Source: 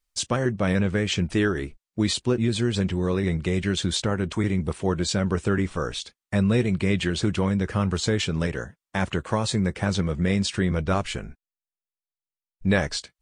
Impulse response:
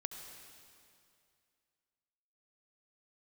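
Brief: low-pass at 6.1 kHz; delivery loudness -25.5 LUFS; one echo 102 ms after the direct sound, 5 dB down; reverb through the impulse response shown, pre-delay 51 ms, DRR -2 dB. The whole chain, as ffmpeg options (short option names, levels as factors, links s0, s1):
-filter_complex "[0:a]lowpass=6100,aecho=1:1:102:0.562,asplit=2[s0][s1];[1:a]atrim=start_sample=2205,adelay=51[s2];[s1][s2]afir=irnorm=-1:irlink=0,volume=1.5[s3];[s0][s3]amix=inputs=2:normalize=0,volume=0.531"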